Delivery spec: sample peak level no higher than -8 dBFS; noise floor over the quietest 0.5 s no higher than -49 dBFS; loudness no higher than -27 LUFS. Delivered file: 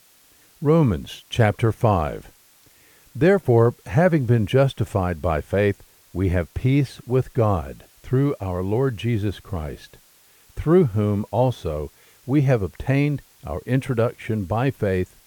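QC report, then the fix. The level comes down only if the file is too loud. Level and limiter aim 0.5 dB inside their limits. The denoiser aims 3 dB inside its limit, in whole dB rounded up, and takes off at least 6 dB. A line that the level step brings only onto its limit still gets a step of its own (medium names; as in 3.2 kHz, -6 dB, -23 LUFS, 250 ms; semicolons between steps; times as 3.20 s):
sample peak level -5.5 dBFS: fail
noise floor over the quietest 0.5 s -55 dBFS: pass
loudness -22.0 LUFS: fail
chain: trim -5.5 dB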